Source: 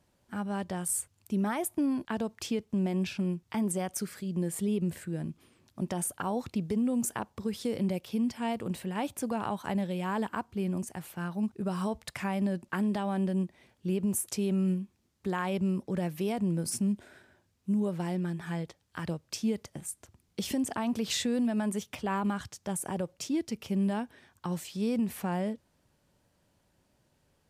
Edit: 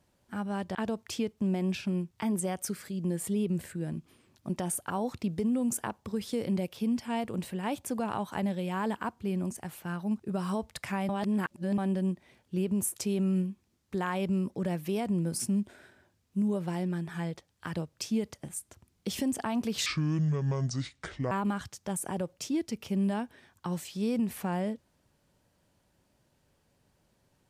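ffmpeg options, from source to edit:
-filter_complex "[0:a]asplit=6[s0][s1][s2][s3][s4][s5];[s0]atrim=end=0.752[s6];[s1]atrim=start=2.068:end=12.412[s7];[s2]atrim=start=12.408:end=13.102,asetpts=PTS-STARTPTS,areverse[s8];[s3]atrim=start=13.098:end=21.184[s9];[s4]atrim=start=21.18:end=22.11,asetpts=PTS-STARTPTS,asetrate=28224,aresample=44100[s10];[s5]atrim=start=22.106[s11];[s6][s7]acrossfade=d=0.004:c1=hsin:c2=hsin[s12];[s12][s8]acrossfade=d=0.004:c1=hsin:c2=hsin[s13];[s13][s9]acrossfade=d=0.004:c1=hsin:c2=hsin[s14];[s14][s10]acrossfade=d=0.004:c1=hsin:c2=hsin[s15];[s15][s11]acrossfade=d=0.004:c1=hsin:c2=hsin"

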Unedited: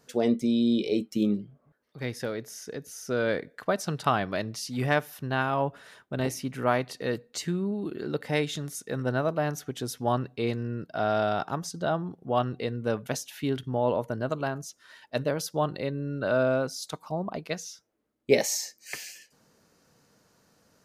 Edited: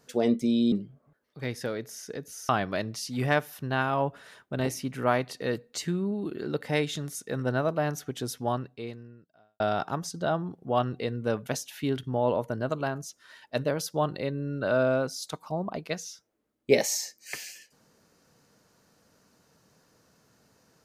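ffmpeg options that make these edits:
-filter_complex "[0:a]asplit=4[s0][s1][s2][s3];[s0]atrim=end=0.722[s4];[s1]atrim=start=1.308:end=3.082[s5];[s2]atrim=start=4.088:end=11.2,asetpts=PTS-STARTPTS,afade=t=out:st=5.842:d=1.27:c=qua[s6];[s3]atrim=start=11.2,asetpts=PTS-STARTPTS,afade=t=in:d=0.004:c=hsin[s7];[s4][s5]acrossfade=d=0.004:c1=hsin:c2=hsin[s8];[s6][s7]concat=n=2:v=0:a=1[s9];[s8][s9]acrossfade=d=0.004:c1=hsin:c2=hsin"

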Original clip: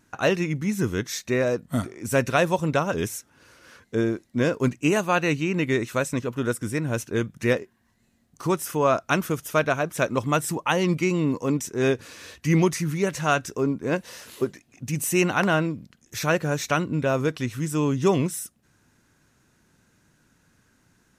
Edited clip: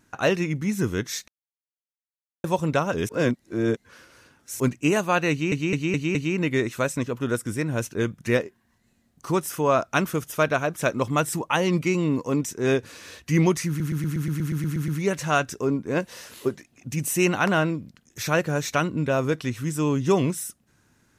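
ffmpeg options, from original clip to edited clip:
-filter_complex "[0:a]asplit=19[s0][s1][s2][s3][s4][s5][s6][s7][s8][s9][s10][s11][s12][s13][s14][s15][s16][s17][s18];[s0]atrim=end=1.28,asetpts=PTS-STARTPTS,afade=t=out:st=1.276:d=0.004:c=hsin[s19];[s1]atrim=start=1.28:end=2.44,asetpts=PTS-STARTPTS,volume=0[s20];[s2]atrim=start=2.44:end=3.092,asetpts=PTS-STARTPTS,afade=t=in:d=0.004:c=hsin[s21];[s3]atrim=start=3.088:end=4.602,asetpts=PTS-STARTPTS,areverse[s22];[s4]atrim=start=4.598:end=5.522[s23];[s5]atrim=start=5.308:end=5.522[s24];[s6]atrim=start=5.308:end=5.522[s25];[s7]atrim=start=5.308:end=5.522[s26];[s8]atrim=start=5.308:end=12.962[s27];[s9]atrim=start=12.838:end=12.962[s28];[s10]atrim=start=12.838:end=12.962[s29];[s11]atrim=start=12.838:end=12.962[s30];[s12]atrim=start=12.838:end=12.962[s31];[s13]atrim=start=12.838:end=12.962[s32];[s14]atrim=start=12.838:end=12.962[s33];[s15]atrim=start=12.838:end=12.962[s34];[s16]atrim=start=12.838:end=12.962[s35];[s17]atrim=start=12.838:end=12.962[s36];[s18]atrim=start=12.838[s37];[s19][s20][s21]concat=n=3:v=0:a=1[s38];[s38][s22]acrossfade=d=0.004:c1=hsin:c2=hsin[s39];[s39][s23]acrossfade=d=0.004:c1=hsin:c2=hsin[s40];[s40][s24]acrossfade=d=0.004:c1=hsin:c2=hsin[s41];[s41][s25]acrossfade=d=0.004:c1=hsin:c2=hsin[s42];[s42][s26]acrossfade=d=0.004:c1=hsin:c2=hsin[s43];[s43][s27]acrossfade=d=0.004:c1=hsin:c2=hsin[s44];[s44][s28]acrossfade=d=0.004:c1=hsin:c2=hsin[s45];[s45][s29]acrossfade=d=0.004:c1=hsin:c2=hsin[s46];[s46][s30]acrossfade=d=0.004:c1=hsin:c2=hsin[s47];[s47][s31]acrossfade=d=0.004:c1=hsin:c2=hsin[s48];[s48][s32]acrossfade=d=0.004:c1=hsin:c2=hsin[s49];[s49][s33]acrossfade=d=0.004:c1=hsin:c2=hsin[s50];[s50][s34]acrossfade=d=0.004:c1=hsin:c2=hsin[s51];[s51][s35]acrossfade=d=0.004:c1=hsin:c2=hsin[s52];[s52][s36]acrossfade=d=0.004:c1=hsin:c2=hsin[s53];[s53][s37]acrossfade=d=0.004:c1=hsin:c2=hsin"

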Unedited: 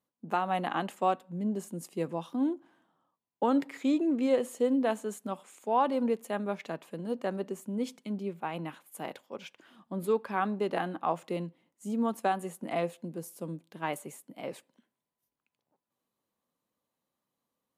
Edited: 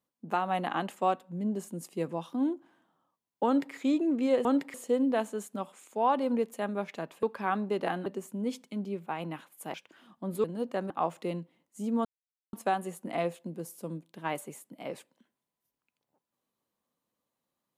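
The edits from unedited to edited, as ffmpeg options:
-filter_complex "[0:a]asplit=9[s0][s1][s2][s3][s4][s5][s6][s7][s8];[s0]atrim=end=4.452[s9];[s1]atrim=start=3.458:end=3.752[s10];[s2]atrim=start=4.448:end=6.942[s11];[s3]atrim=start=10.128:end=10.962[s12];[s4]atrim=start=7.398:end=9.082[s13];[s5]atrim=start=9.428:end=10.132[s14];[s6]atrim=start=6.938:end=7.402[s15];[s7]atrim=start=10.958:end=12.11,asetpts=PTS-STARTPTS,afade=t=out:st=1.148:d=0.004:c=hsin,apad=pad_dur=0.48[s16];[s8]atrim=start=12.11,asetpts=PTS-STARTPTS,afade=t=in:d=0.004:c=hsin[s17];[s9][s10]acrossfade=d=0.004:c1=hsin:c2=hsin[s18];[s18][s11]acrossfade=d=0.004:c1=hsin:c2=hsin[s19];[s19][s12]acrossfade=d=0.004:c1=hsin:c2=hsin[s20];[s20][s13]acrossfade=d=0.004:c1=hsin:c2=hsin[s21];[s21][s14]acrossfade=d=0.004:c1=hsin:c2=hsin[s22];[s22][s15]acrossfade=d=0.004:c1=hsin:c2=hsin[s23];[s16][s17]concat=n=2:v=0:a=1[s24];[s23][s24]acrossfade=d=0.004:c1=hsin:c2=hsin"

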